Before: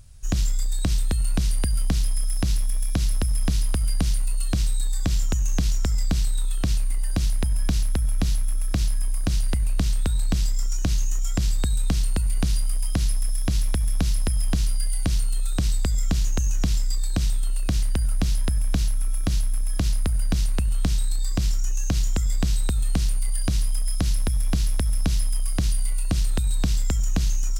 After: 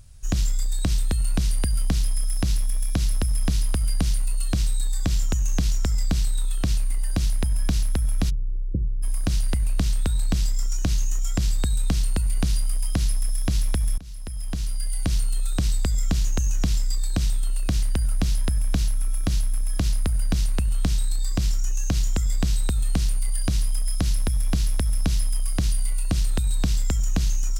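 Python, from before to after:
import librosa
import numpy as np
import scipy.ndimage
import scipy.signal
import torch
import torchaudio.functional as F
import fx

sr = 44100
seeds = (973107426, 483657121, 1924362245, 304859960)

y = fx.cheby_ripple(x, sr, hz=530.0, ripple_db=3, at=(8.29, 9.02), fade=0.02)
y = fx.edit(y, sr, fx.fade_in_from(start_s=13.98, length_s=1.18, floor_db=-23.5), tone=tone)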